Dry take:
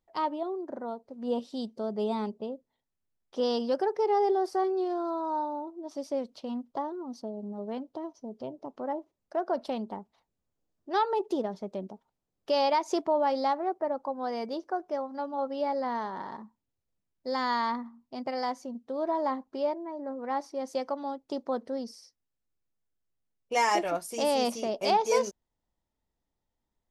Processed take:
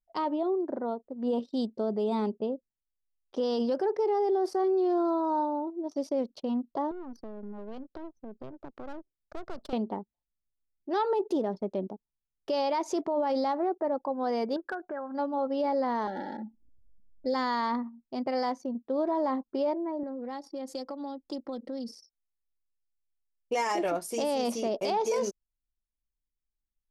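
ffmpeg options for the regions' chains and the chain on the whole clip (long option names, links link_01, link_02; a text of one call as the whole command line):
ffmpeg -i in.wav -filter_complex "[0:a]asettb=1/sr,asplit=3[link_01][link_02][link_03];[link_01]atrim=end=6.914[link_04];[link_02]atrim=start=6.91:end=9.73,asetpts=PTS-STARTPTS,afade=type=in:duration=0.004:curve=qsin,afade=type=out:start_time=2.816:duration=0.004:curve=qsin,aeval=exprs='if(lt(val(0),0),0.251*val(0),val(0))':channel_layout=same,equalizer=frequency=1500:width_type=o:width=0.65:gain=6,acrossover=split=140|3000[link_05][link_06][link_07];[link_06]acompressor=threshold=-44dB:ratio=4:attack=3.2:release=140:knee=2.83:detection=peak[link_08];[link_05][link_08][link_07]amix=inputs=3:normalize=0[link_09];[link_03]atrim=start=9.726[link_10];[link_04][link_09]acrossfade=duration=0.004:curve1=hsin:curve2=qsin[link_11];[link_11][link_10]acrossfade=duration=0.004:curve1=qsin:curve2=hsin,asettb=1/sr,asplit=3[link_12][link_13][link_14];[link_12]atrim=end=14.564[link_15];[link_13]atrim=start=14.56:end=15.14,asetpts=PTS-STARTPTS,afade=type=in:duration=0.004:curve=qsin,afade=type=out:start_time=0.576:duration=0.004:curve=qsin,acompressor=threshold=-41dB:ratio=3:attack=3.2:release=140:knee=1:detection=peak,lowpass=frequency=1600:width_type=q:width=10,asoftclip=type=hard:threshold=-29dB[link_16];[link_14]atrim=start=15.136[link_17];[link_15][link_16]acrossfade=duration=0.004:curve1=hsin:curve2=qsin[link_18];[link_18][link_17]acrossfade=duration=0.004:curve1=qsin:curve2=hsin,asettb=1/sr,asplit=3[link_19][link_20][link_21];[link_19]atrim=end=16.074[link_22];[link_20]atrim=start=16.07:end=17.34,asetpts=PTS-STARTPTS,afade=type=in:duration=0.004:curve=qsin,afade=type=out:start_time=1.266:duration=0.004:curve=qsin,aecho=1:1:3.6:0.69,atrim=end_sample=56007,acompressor=mode=upward:threshold=-37dB:ratio=2.5:attack=3.2:release=140:knee=2.83:detection=peak,asuperstop=centerf=1100:order=8:qfactor=2.2[link_23];[link_21]atrim=start=17.336[link_24];[link_22][link_23]acrossfade=duration=0.004:curve1=hsin:curve2=qsin[link_25];[link_25][link_24]acrossfade=duration=0.004:curve1=qsin:curve2=hsin,asettb=1/sr,asplit=3[link_26][link_27][link_28];[link_26]atrim=end=20.034[link_29];[link_27]atrim=start=20.03:end=21.89,asetpts=PTS-STARTPTS,afade=type=in:duration=0.004:curve=qsin,afade=type=out:start_time=1.856:duration=0.004:curve=qsin,bandreject=frequency=6000:width=6.5,aecho=1:1:3.7:0.96,atrim=end_sample=82026,acrossover=split=140|3000[link_30][link_31][link_32];[link_31]acompressor=threshold=-42dB:ratio=4:attack=3.2:release=140:knee=2.83:detection=peak[link_33];[link_30][link_33][link_32]amix=inputs=3:normalize=0[link_34];[link_28]atrim=start=21.886[link_35];[link_29][link_34]acrossfade=duration=0.004:curve1=hsin:curve2=qsin[link_36];[link_36][link_35]acrossfade=duration=0.004:curve1=qsin:curve2=hsin,anlmdn=0.00251,equalizer=frequency=340:width=0.91:gain=5.5,alimiter=limit=-22dB:level=0:latency=1:release=25,volume=1dB" out.wav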